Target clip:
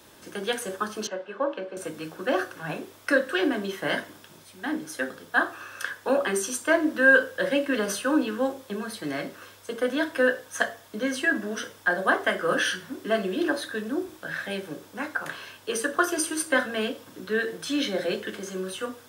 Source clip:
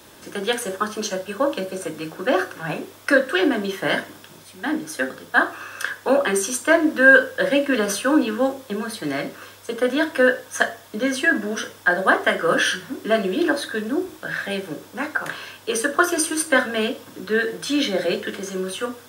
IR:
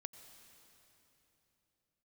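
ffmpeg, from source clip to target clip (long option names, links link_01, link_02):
-filter_complex "[0:a]asettb=1/sr,asplit=3[link_01][link_02][link_03];[link_01]atrim=end=1.074[link_04];[link_02]atrim=start=1.07:end=1.77,asetpts=PTS-STARTPTS,afade=type=in:duration=0.004:curve=qsin,afade=type=out:start_time=0.696:duration=0.004:curve=qsin,highpass=310,lowpass=2300[link_05];[link_03]atrim=start=1.766[link_06];[link_04][link_05]acrossfade=duration=0.004:curve1=hsin:curve2=qsin[link_07];[link_07][link_06]acrossfade=duration=0.004:curve1=qsin:curve2=hsin,volume=-5.5dB"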